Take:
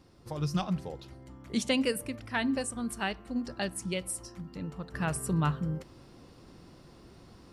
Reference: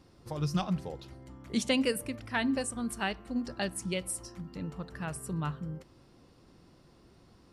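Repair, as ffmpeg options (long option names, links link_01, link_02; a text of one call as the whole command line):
ffmpeg -i in.wav -af "asetnsamples=nb_out_samples=441:pad=0,asendcmd='4.94 volume volume -6dB',volume=0dB" out.wav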